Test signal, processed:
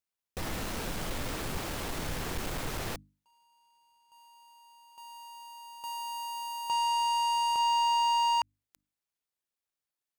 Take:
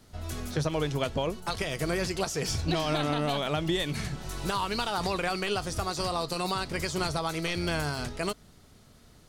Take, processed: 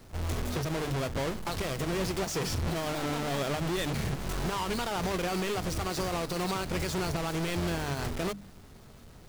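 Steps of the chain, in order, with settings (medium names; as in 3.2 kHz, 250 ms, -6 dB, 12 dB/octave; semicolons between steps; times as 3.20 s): square wave that keeps the level; hum notches 50/100/150/200/250/300 Hz; compression, threshold -25 dBFS; peak limiter -25 dBFS; slew-rate limiter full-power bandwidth 200 Hz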